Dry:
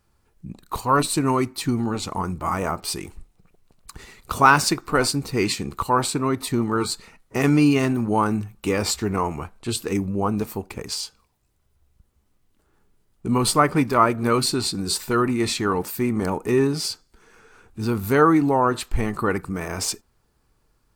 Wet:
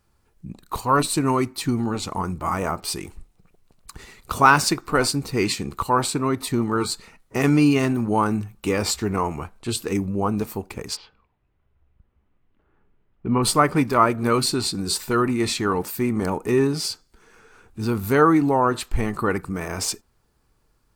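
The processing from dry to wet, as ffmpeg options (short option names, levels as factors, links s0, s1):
-filter_complex "[0:a]asplit=3[s0][s1][s2];[s0]afade=t=out:st=10.95:d=0.02[s3];[s1]lowpass=f=2800:w=0.5412,lowpass=f=2800:w=1.3066,afade=t=in:st=10.95:d=0.02,afade=t=out:st=13.42:d=0.02[s4];[s2]afade=t=in:st=13.42:d=0.02[s5];[s3][s4][s5]amix=inputs=3:normalize=0"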